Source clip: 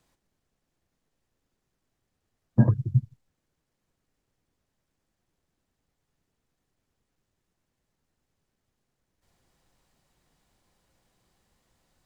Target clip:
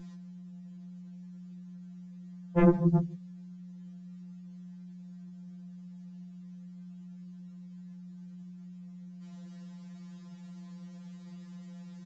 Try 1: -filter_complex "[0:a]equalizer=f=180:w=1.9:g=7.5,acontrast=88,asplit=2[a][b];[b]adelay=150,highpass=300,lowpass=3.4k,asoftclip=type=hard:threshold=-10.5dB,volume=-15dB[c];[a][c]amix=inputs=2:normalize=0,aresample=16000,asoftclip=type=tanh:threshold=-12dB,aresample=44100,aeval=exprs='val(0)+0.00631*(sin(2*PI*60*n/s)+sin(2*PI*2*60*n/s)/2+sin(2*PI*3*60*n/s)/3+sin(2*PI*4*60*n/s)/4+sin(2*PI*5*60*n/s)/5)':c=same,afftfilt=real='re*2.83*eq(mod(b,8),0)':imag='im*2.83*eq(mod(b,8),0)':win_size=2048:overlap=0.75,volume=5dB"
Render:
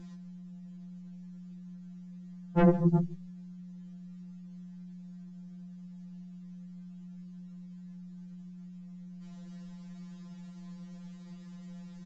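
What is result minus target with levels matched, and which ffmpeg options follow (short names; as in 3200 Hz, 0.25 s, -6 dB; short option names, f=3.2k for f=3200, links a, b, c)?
125 Hz band +4.5 dB
-filter_complex "[0:a]highpass=f=78:w=0.5412,highpass=f=78:w=1.3066,equalizer=f=180:w=1.9:g=7.5,acontrast=88,asplit=2[a][b];[b]adelay=150,highpass=300,lowpass=3.4k,asoftclip=type=hard:threshold=-10.5dB,volume=-15dB[c];[a][c]amix=inputs=2:normalize=0,aresample=16000,asoftclip=type=tanh:threshold=-12dB,aresample=44100,aeval=exprs='val(0)+0.00631*(sin(2*PI*60*n/s)+sin(2*PI*2*60*n/s)/2+sin(2*PI*3*60*n/s)/3+sin(2*PI*4*60*n/s)/4+sin(2*PI*5*60*n/s)/5)':c=same,afftfilt=real='re*2.83*eq(mod(b,8),0)':imag='im*2.83*eq(mod(b,8),0)':win_size=2048:overlap=0.75,volume=5dB"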